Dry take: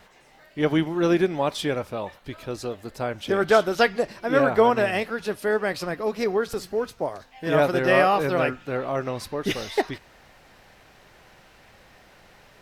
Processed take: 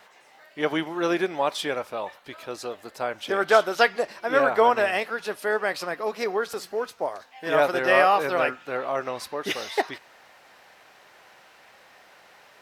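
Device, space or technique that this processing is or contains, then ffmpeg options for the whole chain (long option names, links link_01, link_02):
filter by subtraction: -filter_complex "[0:a]asplit=2[link_01][link_02];[link_02]lowpass=890,volume=-1[link_03];[link_01][link_03]amix=inputs=2:normalize=0"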